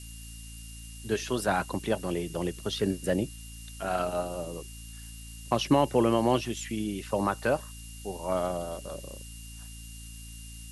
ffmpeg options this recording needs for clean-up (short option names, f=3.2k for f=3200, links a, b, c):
-af "bandreject=f=56:t=h:w=4,bandreject=f=112:t=h:w=4,bandreject=f=168:t=h:w=4,bandreject=f=224:t=h:w=4,bandreject=f=280:t=h:w=4,bandreject=f=2.8k:w=30,afftdn=nr=30:nf=-44"